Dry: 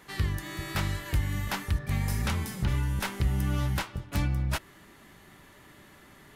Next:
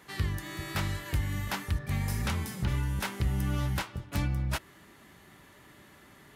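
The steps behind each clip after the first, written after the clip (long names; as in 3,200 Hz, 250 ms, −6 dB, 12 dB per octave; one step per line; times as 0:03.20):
high-pass filter 46 Hz
level −1.5 dB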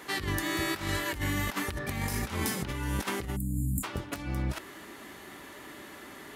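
time-frequency box erased 0:03.36–0:03.84, 290–6,900 Hz
low shelf with overshoot 210 Hz −7.5 dB, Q 1.5
compressor whose output falls as the input rises −38 dBFS, ratio −0.5
level +7 dB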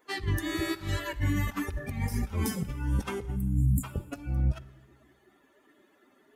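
spectral dynamics exaggerated over time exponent 2
low-shelf EQ 410 Hz +9 dB
convolution reverb RT60 1.3 s, pre-delay 38 ms, DRR 16.5 dB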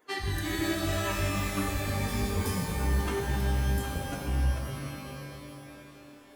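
downward compressor, threshold −29 dBFS, peak gain reduction 8.5 dB
reverb with rising layers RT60 2.6 s, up +12 semitones, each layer −2 dB, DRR 1 dB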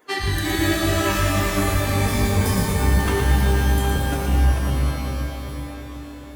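echo with a time of its own for lows and highs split 1,100 Hz, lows 377 ms, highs 115 ms, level −5.5 dB
level +8.5 dB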